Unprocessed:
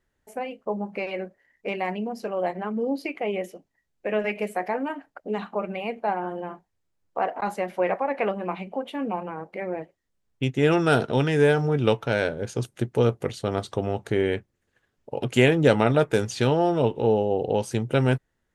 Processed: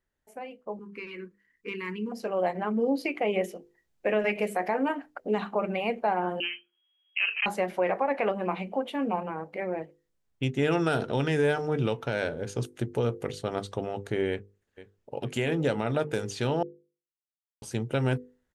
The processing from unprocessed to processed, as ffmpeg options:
ffmpeg -i in.wav -filter_complex "[0:a]asettb=1/sr,asplit=3[link_01][link_02][link_03];[link_01]atrim=end=0.794[link_04];[link_02]atrim=start=0.79:end=2.12,asetpts=PTS-STARTPTS,afade=type=in:duration=0.004:curve=qsin,afade=type=out:start_time=1.326:duration=0.004:curve=qsin,asuperstop=centerf=680:order=8:qfactor=1.3[link_05];[link_03]atrim=start=2.116[link_06];[link_04][link_05]acrossfade=duration=0.004:curve1=hsin:curve2=qsin[link_07];[link_07][link_06]acrossfade=duration=0.004:curve1=qsin:curve2=hsin,asettb=1/sr,asplit=3[link_08][link_09][link_10];[link_08]atrim=end=6.404[link_11];[link_09]atrim=start=6.4:end=7.46,asetpts=PTS-STARTPTS,afade=type=in:duration=0.004:curve=qsin,afade=type=out:start_time=1.056:duration=0.004:curve=qsin,lowpass=frequency=2800:width_type=q:width=0.5098,lowpass=frequency=2800:width_type=q:width=0.6013,lowpass=frequency=2800:width_type=q:width=0.9,lowpass=frequency=2800:width_type=q:width=2.563,afreqshift=-3300[link_12];[link_10]atrim=start=7.456[link_13];[link_11][link_12]acrossfade=duration=0.004:curve1=hsin:curve2=qsin[link_14];[link_14][link_13]acrossfade=duration=0.004:curve1=qsin:curve2=hsin,asplit=2[link_15][link_16];[link_16]afade=type=in:start_time=14.3:duration=0.01,afade=type=out:start_time=15.2:duration=0.01,aecho=0:1:470|940|1410|1880:0.177828|0.0711312|0.0284525|0.011381[link_17];[link_15][link_17]amix=inputs=2:normalize=0,asplit=3[link_18][link_19][link_20];[link_18]atrim=end=16.63,asetpts=PTS-STARTPTS,afade=type=out:start_time=16.626:duration=0.004:curve=hsin[link_21];[link_19]atrim=start=16.63:end=17.62,asetpts=PTS-STARTPTS,volume=0[link_22];[link_20]atrim=start=17.62,asetpts=PTS-STARTPTS,afade=type=in:duration=0.004:curve=hsin[link_23];[link_21][link_22][link_23]concat=n=3:v=0:a=1,bandreject=frequency=50:width_type=h:width=6,bandreject=frequency=100:width_type=h:width=6,bandreject=frequency=150:width_type=h:width=6,bandreject=frequency=200:width_type=h:width=6,bandreject=frequency=250:width_type=h:width=6,bandreject=frequency=300:width_type=h:width=6,bandreject=frequency=350:width_type=h:width=6,bandreject=frequency=400:width_type=h:width=6,bandreject=frequency=450:width_type=h:width=6,bandreject=frequency=500:width_type=h:width=6,dynaudnorm=framelen=870:gausssize=5:maxgain=11.5dB,alimiter=limit=-8dB:level=0:latency=1:release=95,volume=-8dB" out.wav

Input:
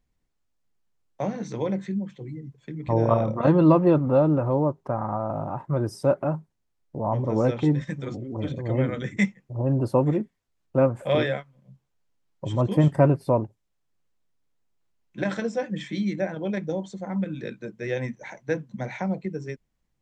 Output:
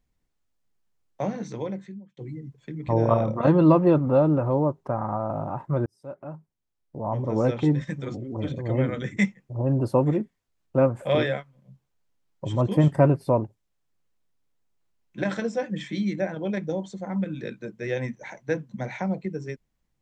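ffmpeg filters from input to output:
ffmpeg -i in.wav -filter_complex "[0:a]asplit=3[link_01][link_02][link_03];[link_01]atrim=end=2.17,asetpts=PTS-STARTPTS,afade=type=out:start_time=1.34:duration=0.83[link_04];[link_02]atrim=start=2.17:end=5.86,asetpts=PTS-STARTPTS,afade=type=in:duration=0.004:curve=hsin,afade=type=out:start_time=3.686:duration=0.004:curve=hsin[link_05];[link_03]atrim=start=5.86,asetpts=PTS-STARTPTS,afade=type=in:duration=1.68[link_06];[link_04][link_05][link_06]concat=n=3:v=0:a=1" out.wav

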